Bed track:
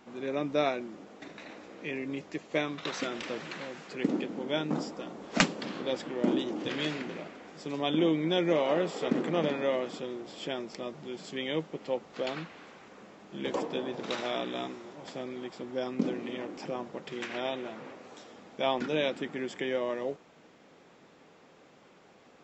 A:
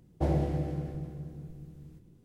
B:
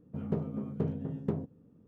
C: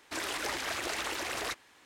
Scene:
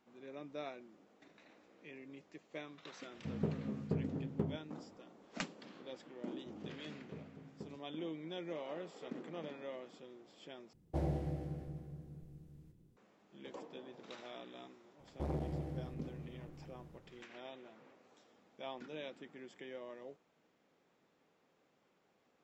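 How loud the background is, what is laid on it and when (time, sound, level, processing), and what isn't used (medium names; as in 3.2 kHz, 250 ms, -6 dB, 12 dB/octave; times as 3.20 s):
bed track -17 dB
3.11 s: add B -4.5 dB
6.32 s: add B -16 dB + bass shelf 85 Hz -11 dB
10.73 s: replace with A -8.5 dB
14.99 s: add A -7.5 dB + transformer saturation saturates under 350 Hz
not used: C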